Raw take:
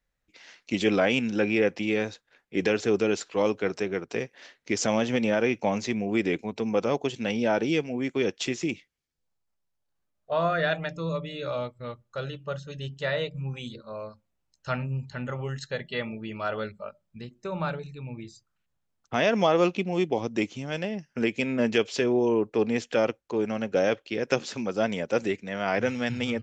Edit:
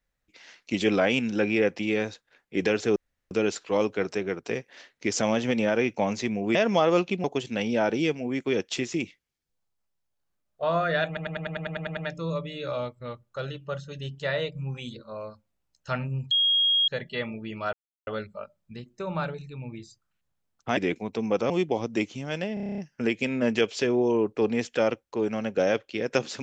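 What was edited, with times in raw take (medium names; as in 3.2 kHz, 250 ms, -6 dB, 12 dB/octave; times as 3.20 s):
2.96 s: insert room tone 0.35 s
6.20–6.93 s: swap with 19.22–19.91 s
10.76 s: stutter 0.10 s, 10 plays
15.10–15.67 s: bleep 3.27 kHz -19 dBFS
16.52 s: insert silence 0.34 s
20.95 s: stutter 0.03 s, 9 plays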